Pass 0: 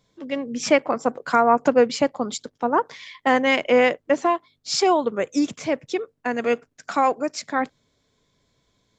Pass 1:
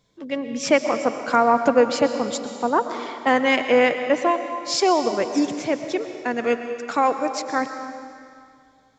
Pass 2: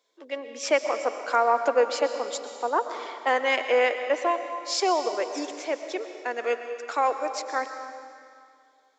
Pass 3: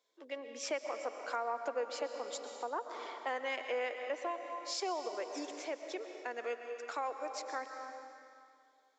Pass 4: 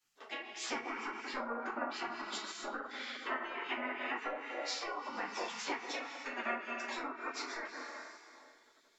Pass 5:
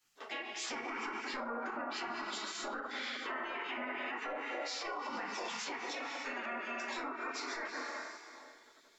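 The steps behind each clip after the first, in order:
reverb RT60 2.3 s, pre-delay 80 ms, DRR 7.5 dB
HPF 380 Hz 24 dB/oct; gain -4 dB
compressor 2:1, threshold -32 dBFS, peak gain reduction 9 dB; gain -7 dB
treble ducked by the level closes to 1200 Hz, closed at -32.5 dBFS; shoebox room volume 190 m³, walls furnished, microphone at 3.6 m; spectral gate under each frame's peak -15 dB weak; gain +4 dB
limiter -35.5 dBFS, peak gain reduction 11.5 dB; gain +4.5 dB

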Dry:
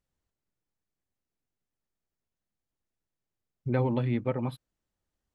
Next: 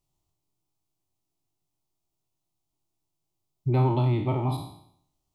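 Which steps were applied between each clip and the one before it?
spectral trails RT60 0.68 s; bell 69 Hz +11.5 dB 0.52 oct; fixed phaser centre 330 Hz, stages 8; gain +5.5 dB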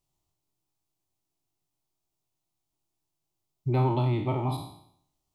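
low shelf 330 Hz -3 dB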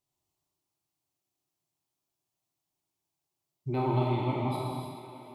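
HPF 130 Hz 6 dB/oct; thinning echo 0.431 s, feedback 65%, high-pass 190 Hz, level -13.5 dB; non-linear reverb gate 0.35 s flat, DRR -2 dB; gain -4.5 dB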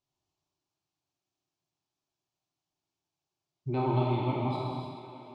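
LPF 6500 Hz 24 dB/oct; notch 2000 Hz, Q 10

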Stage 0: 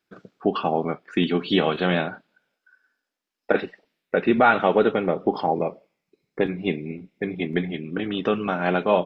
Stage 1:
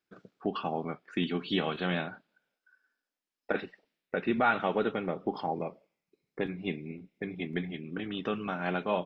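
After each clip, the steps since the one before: dynamic EQ 500 Hz, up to -4 dB, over -33 dBFS, Q 0.93; gain -7.5 dB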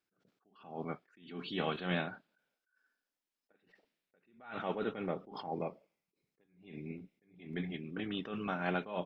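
attack slew limiter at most 110 dB/s; gain -2 dB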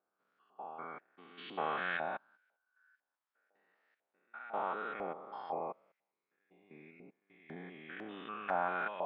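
stepped spectrum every 0.2 s; LFO band-pass saw up 2 Hz 740–1800 Hz; gain +10.5 dB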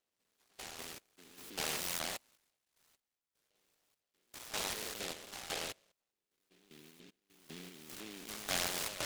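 noise-modulated delay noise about 2800 Hz, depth 0.3 ms; gain -2 dB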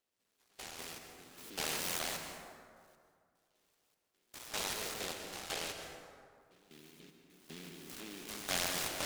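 plate-style reverb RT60 2.2 s, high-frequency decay 0.45×, pre-delay 0.11 s, DRR 4.5 dB

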